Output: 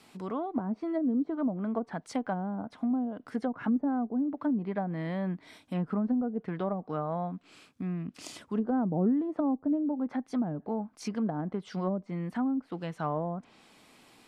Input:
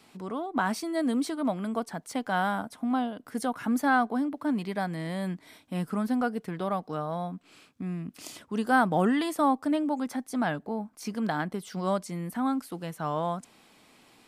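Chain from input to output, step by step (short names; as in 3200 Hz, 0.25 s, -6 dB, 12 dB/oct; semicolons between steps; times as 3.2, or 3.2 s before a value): treble ducked by the level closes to 400 Hz, closed at -24 dBFS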